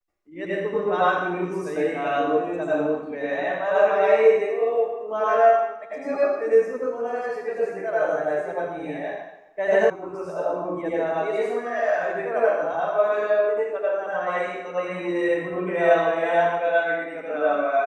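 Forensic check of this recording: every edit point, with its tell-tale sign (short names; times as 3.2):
9.9 sound cut off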